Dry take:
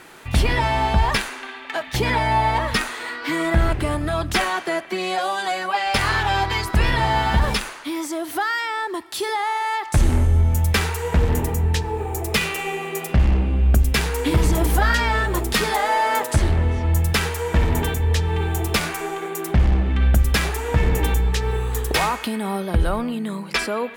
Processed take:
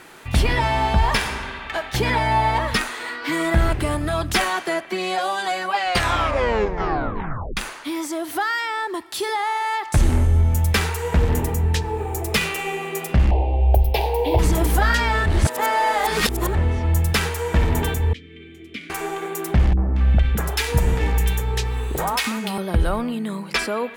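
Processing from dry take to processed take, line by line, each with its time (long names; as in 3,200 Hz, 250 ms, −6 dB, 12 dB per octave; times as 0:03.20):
0:00.99–0:01.76: thrown reverb, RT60 2 s, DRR 5.5 dB
0:03.32–0:04.74: high-shelf EQ 5,700 Hz +4 dB
0:05.78: tape stop 1.79 s
0:13.31–0:14.39: drawn EQ curve 110 Hz 0 dB, 190 Hz −24 dB, 350 Hz +1 dB, 850 Hz +13 dB, 1,300 Hz −23 dB, 2,600 Hz −2 dB, 4,500 Hz −5 dB, 7,500 Hz −23 dB, 11,000 Hz −8 dB, 16,000 Hz +3 dB
0:15.26–0:16.55: reverse
0:18.13–0:18.90: formant filter i
0:19.73–0:22.58: three-band delay without the direct sound lows, mids, highs 40/230 ms, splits 360/1,400 Hz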